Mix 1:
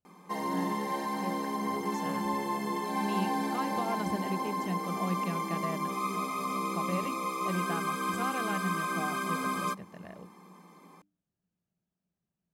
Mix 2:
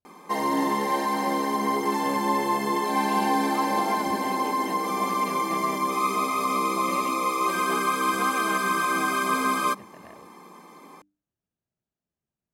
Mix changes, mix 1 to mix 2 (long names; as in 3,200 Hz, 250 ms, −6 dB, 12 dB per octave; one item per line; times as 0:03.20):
background +8.5 dB
master: add parametric band 180 Hz −13 dB 0.31 octaves